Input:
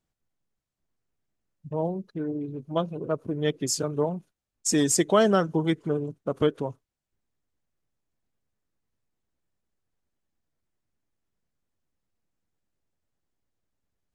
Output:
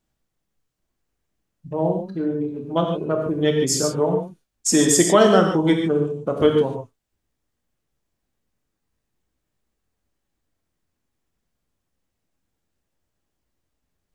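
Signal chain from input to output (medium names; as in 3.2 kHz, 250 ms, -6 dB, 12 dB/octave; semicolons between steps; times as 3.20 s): gated-style reverb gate 170 ms flat, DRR 1.5 dB; trim +4.5 dB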